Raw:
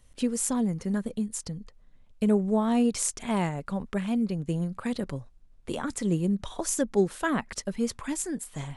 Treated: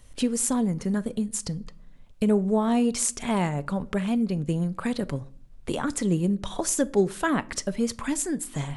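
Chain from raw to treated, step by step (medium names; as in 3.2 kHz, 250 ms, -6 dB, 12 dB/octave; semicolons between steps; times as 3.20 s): in parallel at +2 dB: compression, threshold -36 dBFS, peak gain reduction 17 dB; on the sum: simulated room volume 610 m³, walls furnished, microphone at 0.31 m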